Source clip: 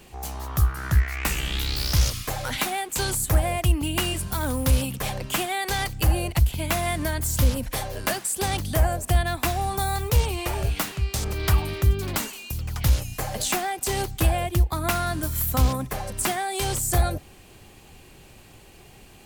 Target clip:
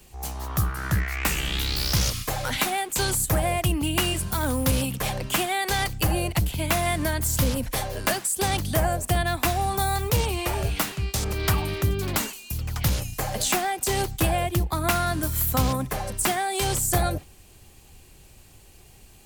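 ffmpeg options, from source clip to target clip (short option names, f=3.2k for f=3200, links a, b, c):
-filter_complex "[0:a]acrossover=split=100|4700[a][b][c];[a]asoftclip=type=tanh:threshold=-27.5dB[d];[b]agate=range=-8dB:threshold=-38dB:ratio=16:detection=peak[e];[d][e][c]amix=inputs=3:normalize=0,volume=1.5dB"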